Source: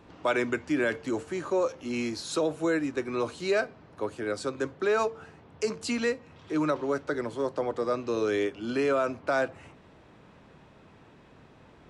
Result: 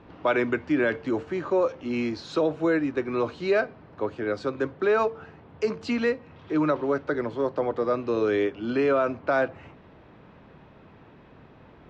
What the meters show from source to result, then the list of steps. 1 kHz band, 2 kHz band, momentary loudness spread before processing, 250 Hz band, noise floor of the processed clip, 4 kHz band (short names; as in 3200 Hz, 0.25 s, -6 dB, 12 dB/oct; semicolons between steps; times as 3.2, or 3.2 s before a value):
+3.0 dB, +2.0 dB, 6 LU, +3.5 dB, -52 dBFS, -2.0 dB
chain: air absorption 210 m; gain +4 dB